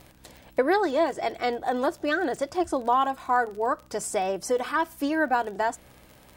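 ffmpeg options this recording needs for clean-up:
ffmpeg -i in.wav -af "adeclick=threshold=4,bandreject=frequency=63.7:width_type=h:width=4,bandreject=frequency=127.4:width_type=h:width=4,bandreject=frequency=191.1:width_type=h:width=4,bandreject=frequency=254.8:width_type=h:width=4,bandreject=frequency=318.5:width_type=h:width=4" out.wav

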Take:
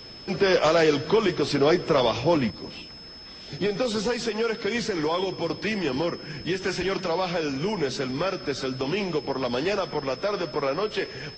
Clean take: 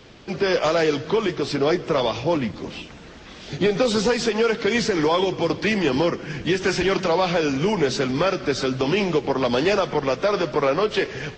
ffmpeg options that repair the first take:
ffmpeg -i in.wav -af "bandreject=frequency=5200:width=30,asetnsamples=nb_out_samples=441:pad=0,asendcmd='2.5 volume volume 6dB',volume=0dB" out.wav

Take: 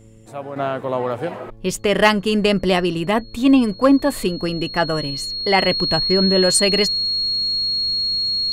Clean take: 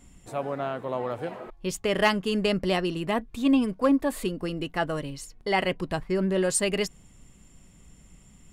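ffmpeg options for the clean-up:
ffmpeg -i in.wav -af "bandreject=frequency=110.4:width_type=h:width=4,bandreject=frequency=220.8:width_type=h:width=4,bandreject=frequency=331.2:width_type=h:width=4,bandreject=frequency=441.6:width_type=h:width=4,bandreject=frequency=552:width_type=h:width=4,bandreject=frequency=4300:width=30,asetnsamples=nb_out_samples=441:pad=0,asendcmd='0.56 volume volume -8dB',volume=0dB" out.wav

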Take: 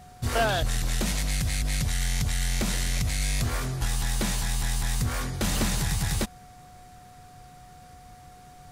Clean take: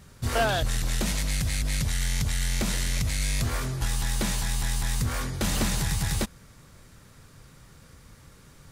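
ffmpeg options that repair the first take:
ffmpeg -i in.wav -af "bandreject=frequency=730:width=30" out.wav

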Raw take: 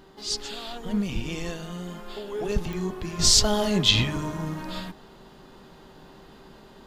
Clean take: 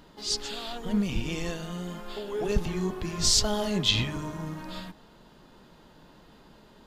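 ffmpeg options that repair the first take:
ffmpeg -i in.wav -af "adeclick=threshold=4,bandreject=frequency=387.2:width_type=h:width=4,bandreject=frequency=774.4:width_type=h:width=4,bandreject=frequency=1161.6:width_type=h:width=4,bandreject=frequency=1548.8:width_type=h:width=4,bandreject=frequency=1936:width_type=h:width=4,asetnsamples=nb_out_samples=441:pad=0,asendcmd='3.19 volume volume -4.5dB',volume=0dB" out.wav

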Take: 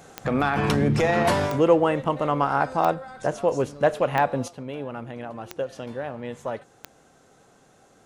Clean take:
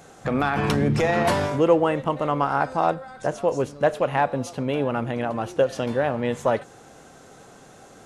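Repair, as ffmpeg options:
ffmpeg -i in.wav -af "adeclick=threshold=4,asetnsamples=nb_out_samples=441:pad=0,asendcmd='4.48 volume volume 9dB',volume=0dB" out.wav

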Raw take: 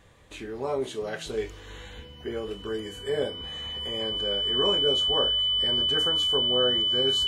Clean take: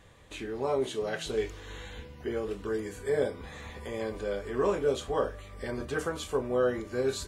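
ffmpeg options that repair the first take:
ffmpeg -i in.wav -af "bandreject=frequency=3000:width=30" out.wav

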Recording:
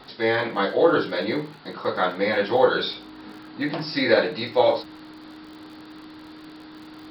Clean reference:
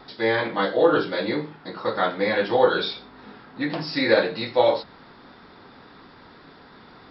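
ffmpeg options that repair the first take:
ffmpeg -i in.wav -af "adeclick=threshold=4,bandreject=frequency=310:width=30,afftdn=noise_reduction=6:noise_floor=-43" out.wav

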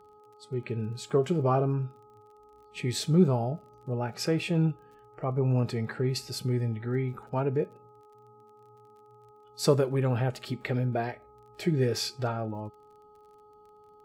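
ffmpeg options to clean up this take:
ffmpeg -i in.wav -af "adeclick=threshold=4,bandreject=frequency=420.8:width_type=h:width=4,bandreject=frequency=841.6:width_type=h:width=4,bandreject=frequency=1262.4:width_type=h:width=4" out.wav

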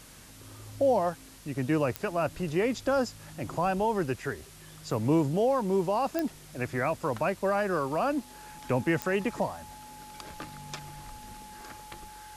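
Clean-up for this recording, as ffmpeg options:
ffmpeg -i in.wav -af "adeclick=threshold=4,bandreject=frequency=46.3:width_type=h:width=4,bandreject=frequency=92.6:width_type=h:width=4,bandreject=frequency=138.9:width_type=h:width=4,bandreject=frequency=185.2:width_type=h:width=4,bandreject=frequency=231.5:width_type=h:width=4,bandreject=frequency=850:width=30,afwtdn=0.0028" out.wav

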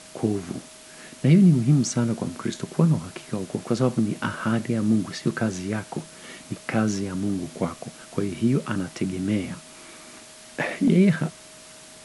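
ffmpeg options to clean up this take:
ffmpeg -i in.wav -af "adeclick=threshold=4,bandreject=frequency=630:width=30,afwtdn=0.0063" out.wav

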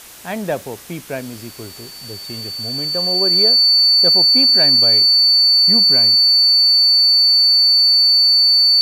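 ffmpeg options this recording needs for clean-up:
ffmpeg -i in.wav -af "bandreject=frequency=59:width_type=h:width=4,bandreject=frequency=118:width_type=h:width=4,bandreject=frequency=177:width_type=h:width=4,bandreject=frequency=236:width_type=h:width=4,bandreject=frequency=295:width_type=h:width=4,bandreject=frequency=4500:width=30,afwtdn=0.013" out.wav

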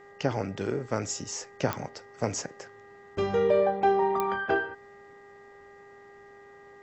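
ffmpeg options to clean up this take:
ffmpeg -i in.wav -af "adeclick=threshold=4,bandreject=frequency=402.2:width_type=h:width=4,bandreject=frequency=804.4:width_type=h:width=4,bandreject=frequency=1206.6:width_type=h:width=4,bandreject=frequency=1608.8:width_type=h:width=4,bandreject=frequency=2011:width_type=h:width=4,bandreject=frequency=1900:width=30" out.wav

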